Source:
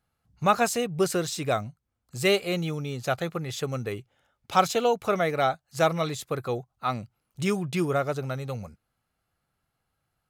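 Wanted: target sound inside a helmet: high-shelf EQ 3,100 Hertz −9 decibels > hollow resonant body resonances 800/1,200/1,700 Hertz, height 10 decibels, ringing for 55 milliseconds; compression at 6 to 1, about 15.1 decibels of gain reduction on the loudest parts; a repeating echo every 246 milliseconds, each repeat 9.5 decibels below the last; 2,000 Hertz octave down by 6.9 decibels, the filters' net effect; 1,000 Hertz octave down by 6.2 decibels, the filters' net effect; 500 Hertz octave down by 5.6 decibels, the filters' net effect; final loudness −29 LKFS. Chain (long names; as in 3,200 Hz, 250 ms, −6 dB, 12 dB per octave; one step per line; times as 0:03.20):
parametric band 500 Hz −5.5 dB
parametric band 1,000 Hz −4.5 dB
parametric band 2,000 Hz −4 dB
downward compressor 6 to 1, threshold −38 dBFS
high-shelf EQ 3,100 Hz −9 dB
repeating echo 246 ms, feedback 33%, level −9.5 dB
hollow resonant body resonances 800/1,200/1,700 Hz, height 10 dB, ringing for 55 ms
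level +12.5 dB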